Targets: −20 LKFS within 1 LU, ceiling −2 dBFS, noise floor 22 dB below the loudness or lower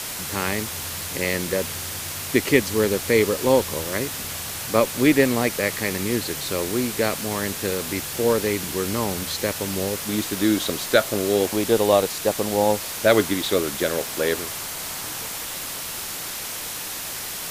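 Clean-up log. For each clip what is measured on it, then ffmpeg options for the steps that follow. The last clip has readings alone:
background noise floor −32 dBFS; target noise floor −45 dBFS; integrated loudness −23.0 LKFS; sample peak −1.5 dBFS; target loudness −20.0 LKFS
→ -af "afftdn=noise_reduction=13:noise_floor=-32"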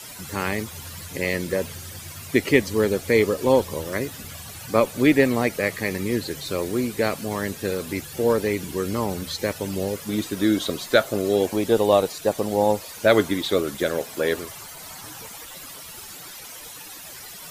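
background noise floor −40 dBFS; target noise floor −46 dBFS
→ -af "afftdn=noise_reduction=6:noise_floor=-40"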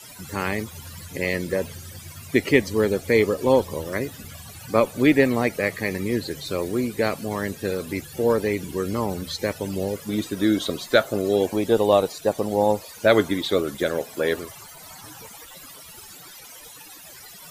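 background noise floor −44 dBFS; target noise floor −46 dBFS
→ -af "afftdn=noise_reduction=6:noise_floor=-44"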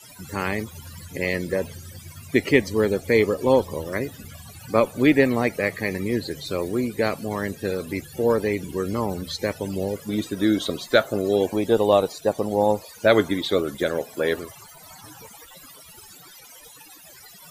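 background noise floor −47 dBFS; integrated loudness −23.5 LKFS; sample peak −2.0 dBFS; target loudness −20.0 LKFS
→ -af "volume=3.5dB,alimiter=limit=-2dB:level=0:latency=1"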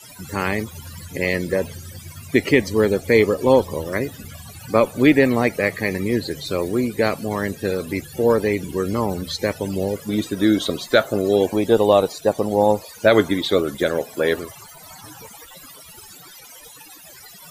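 integrated loudness −20.0 LKFS; sample peak −2.0 dBFS; background noise floor −43 dBFS

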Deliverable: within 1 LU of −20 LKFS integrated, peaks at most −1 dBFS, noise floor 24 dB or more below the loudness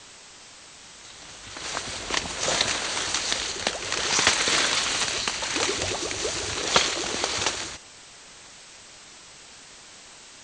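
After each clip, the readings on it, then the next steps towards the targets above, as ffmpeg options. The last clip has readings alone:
background noise floor −47 dBFS; target noise floor −49 dBFS; integrated loudness −24.5 LKFS; sample peak −4.0 dBFS; target loudness −20.0 LKFS
→ -af "afftdn=noise_reduction=6:noise_floor=-47"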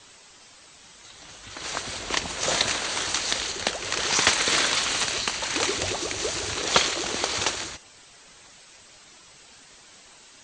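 background noise floor −51 dBFS; integrated loudness −24.5 LKFS; sample peak −4.0 dBFS; target loudness −20.0 LKFS
→ -af "volume=4.5dB,alimiter=limit=-1dB:level=0:latency=1"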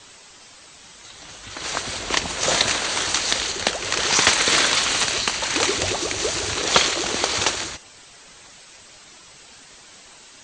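integrated loudness −20.0 LKFS; sample peak −1.0 dBFS; background noise floor −47 dBFS

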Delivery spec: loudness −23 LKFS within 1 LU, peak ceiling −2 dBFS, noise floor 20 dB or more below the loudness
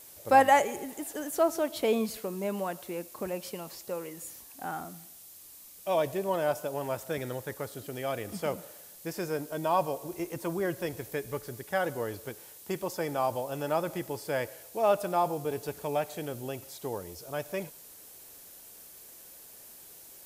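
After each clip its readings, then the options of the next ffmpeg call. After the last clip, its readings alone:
background noise floor −51 dBFS; target noise floor −52 dBFS; integrated loudness −32.0 LKFS; sample peak −10.0 dBFS; target loudness −23.0 LKFS
→ -af "afftdn=noise_reduction=6:noise_floor=-51"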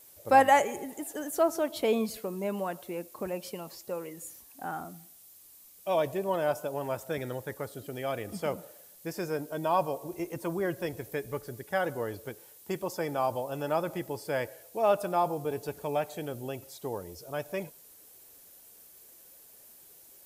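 background noise floor −55 dBFS; integrated loudness −32.0 LKFS; sample peak −10.0 dBFS; target loudness −23.0 LKFS
→ -af "volume=9dB,alimiter=limit=-2dB:level=0:latency=1"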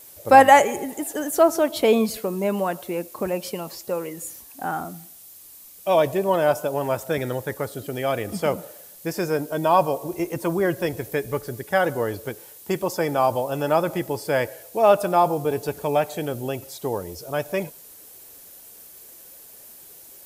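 integrated loudness −23.0 LKFS; sample peak −2.0 dBFS; background noise floor −46 dBFS

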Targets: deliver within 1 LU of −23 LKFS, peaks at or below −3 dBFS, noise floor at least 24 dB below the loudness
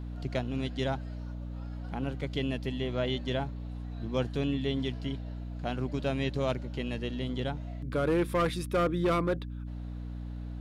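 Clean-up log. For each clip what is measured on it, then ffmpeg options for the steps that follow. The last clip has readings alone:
mains hum 60 Hz; hum harmonics up to 300 Hz; level of the hum −36 dBFS; integrated loudness −33.0 LKFS; sample peak −18.0 dBFS; target loudness −23.0 LKFS
→ -af "bandreject=frequency=60:width_type=h:width=6,bandreject=frequency=120:width_type=h:width=6,bandreject=frequency=180:width_type=h:width=6,bandreject=frequency=240:width_type=h:width=6,bandreject=frequency=300:width_type=h:width=6"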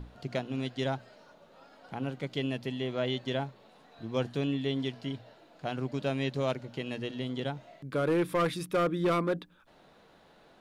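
mains hum none found; integrated loudness −33.0 LKFS; sample peak −18.0 dBFS; target loudness −23.0 LKFS
→ -af "volume=10dB"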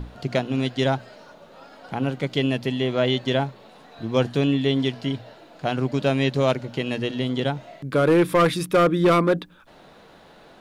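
integrated loudness −23.0 LKFS; sample peak −8.0 dBFS; background noise floor −50 dBFS

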